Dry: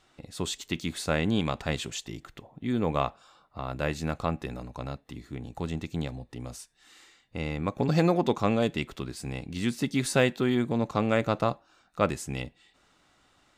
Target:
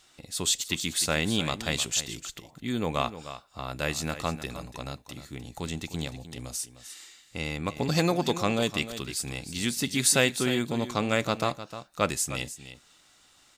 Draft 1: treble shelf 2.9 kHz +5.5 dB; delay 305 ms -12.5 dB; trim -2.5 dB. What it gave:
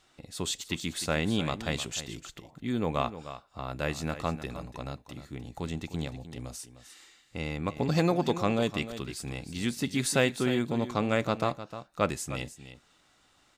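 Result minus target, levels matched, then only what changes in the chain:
8 kHz band -6.5 dB
change: treble shelf 2.9 kHz +16 dB

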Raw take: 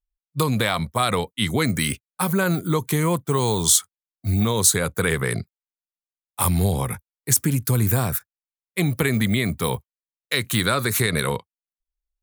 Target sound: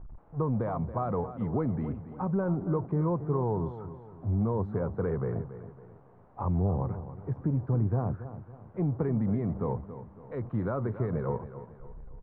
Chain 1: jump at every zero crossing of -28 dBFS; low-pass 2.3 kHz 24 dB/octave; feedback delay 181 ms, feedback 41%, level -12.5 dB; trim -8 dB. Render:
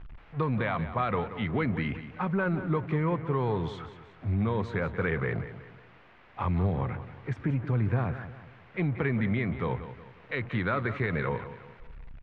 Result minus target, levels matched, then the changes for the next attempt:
2 kHz band +16.5 dB; echo 97 ms early
change: low-pass 1 kHz 24 dB/octave; change: feedback delay 278 ms, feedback 41%, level -12.5 dB

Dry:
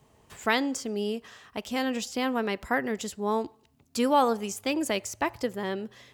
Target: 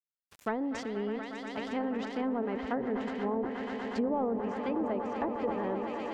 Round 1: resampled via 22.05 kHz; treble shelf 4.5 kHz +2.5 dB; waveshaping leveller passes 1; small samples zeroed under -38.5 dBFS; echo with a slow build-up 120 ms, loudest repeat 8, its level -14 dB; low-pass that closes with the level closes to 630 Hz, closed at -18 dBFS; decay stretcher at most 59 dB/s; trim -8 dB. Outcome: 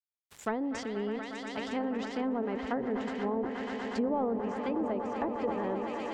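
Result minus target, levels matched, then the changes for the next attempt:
8 kHz band +4.5 dB
change: treble shelf 4.5 kHz -6.5 dB

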